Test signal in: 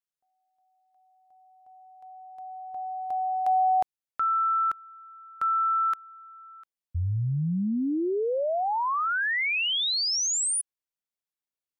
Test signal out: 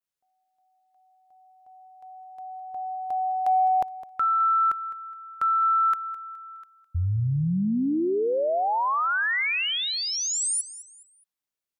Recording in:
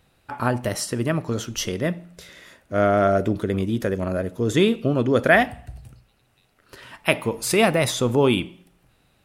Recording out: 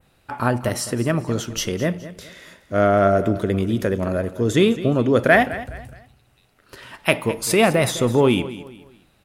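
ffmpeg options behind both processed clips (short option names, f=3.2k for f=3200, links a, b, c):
-filter_complex "[0:a]adynamicequalizer=threshold=0.01:dfrequency=4600:dqfactor=0.83:tfrequency=4600:tqfactor=0.83:attack=5:release=100:ratio=0.375:range=2.5:mode=cutabove:tftype=bell,asplit=2[a][b];[b]asoftclip=type=tanh:threshold=-11.5dB,volume=-10dB[c];[a][c]amix=inputs=2:normalize=0,aecho=1:1:209|418|627:0.168|0.0571|0.0194"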